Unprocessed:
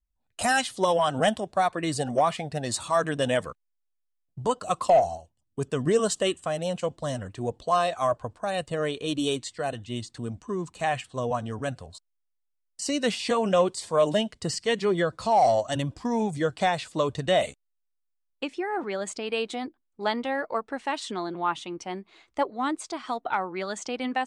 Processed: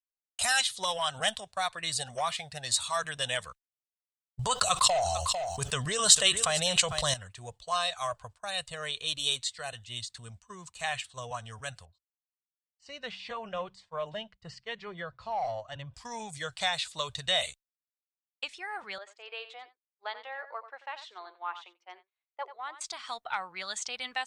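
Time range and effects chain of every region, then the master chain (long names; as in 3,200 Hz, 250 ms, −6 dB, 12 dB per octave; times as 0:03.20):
0:04.39–0:07.14: single-tap delay 449 ms −20.5 dB + envelope flattener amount 70%
0:11.85–0:15.94: head-to-tape spacing loss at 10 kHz 36 dB + hum removal 63.84 Hz, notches 3
0:18.98–0:22.81: Butterworth high-pass 360 Hz + head-to-tape spacing loss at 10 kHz 32 dB + single-tap delay 90 ms −12 dB
whole clip: guitar amp tone stack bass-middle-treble 10-0-10; downward expander −49 dBFS; dynamic equaliser 3,800 Hz, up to +7 dB, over −54 dBFS, Q 4.5; level +3 dB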